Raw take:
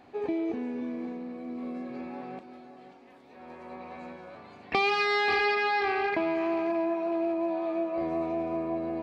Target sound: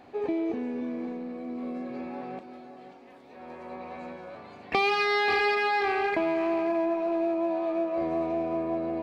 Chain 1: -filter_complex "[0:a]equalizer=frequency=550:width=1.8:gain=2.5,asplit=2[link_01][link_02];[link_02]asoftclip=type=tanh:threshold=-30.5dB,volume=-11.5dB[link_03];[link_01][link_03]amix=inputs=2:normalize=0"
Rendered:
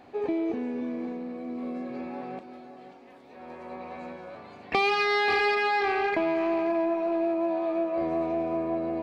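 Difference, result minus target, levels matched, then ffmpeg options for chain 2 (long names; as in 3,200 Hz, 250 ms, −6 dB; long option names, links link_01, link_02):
soft clipping: distortion −5 dB
-filter_complex "[0:a]equalizer=frequency=550:width=1.8:gain=2.5,asplit=2[link_01][link_02];[link_02]asoftclip=type=tanh:threshold=-38.5dB,volume=-11.5dB[link_03];[link_01][link_03]amix=inputs=2:normalize=0"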